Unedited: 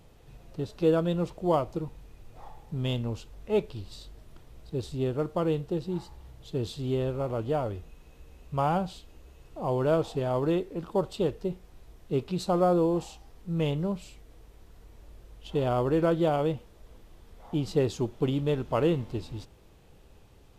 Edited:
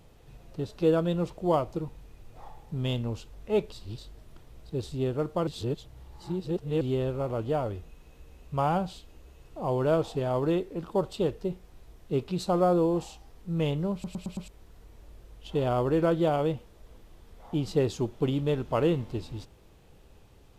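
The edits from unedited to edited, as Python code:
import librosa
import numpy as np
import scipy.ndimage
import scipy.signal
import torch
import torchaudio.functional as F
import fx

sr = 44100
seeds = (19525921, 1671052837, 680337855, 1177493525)

y = fx.edit(x, sr, fx.reverse_span(start_s=3.72, length_s=0.26),
    fx.reverse_span(start_s=5.47, length_s=1.34),
    fx.stutter_over(start_s=13.93, slice_s=0.11, count=5), tone=tone)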